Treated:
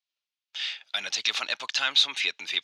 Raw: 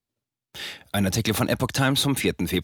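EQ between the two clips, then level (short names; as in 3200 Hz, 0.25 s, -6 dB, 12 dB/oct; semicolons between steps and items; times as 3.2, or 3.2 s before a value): HPF 1400 Hz 12 dB/oct; air absorption 140 m; band shelf 4100 Hz +8 dB; 0.0 dB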